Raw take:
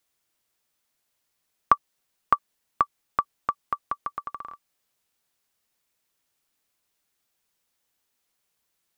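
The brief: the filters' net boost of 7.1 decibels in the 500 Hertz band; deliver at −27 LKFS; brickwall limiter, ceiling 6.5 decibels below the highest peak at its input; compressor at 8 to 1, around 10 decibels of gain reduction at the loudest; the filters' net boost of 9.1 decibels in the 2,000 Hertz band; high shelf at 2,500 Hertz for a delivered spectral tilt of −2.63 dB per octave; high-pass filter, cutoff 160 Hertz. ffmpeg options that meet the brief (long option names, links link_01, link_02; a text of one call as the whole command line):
ffmpeg -i in.wav -af "highpass=160,equalizer=frequency=500:width_type=o:gain=8,equalizer=frequency=2000:width_type=o:gain=8.5,highshelf=frequency=2500:gain=8,acompressor=threshold=-20dB:ratio=8,volume=6.5dB,alimiter=limit=-1dB:level=0:latency=1" out.wav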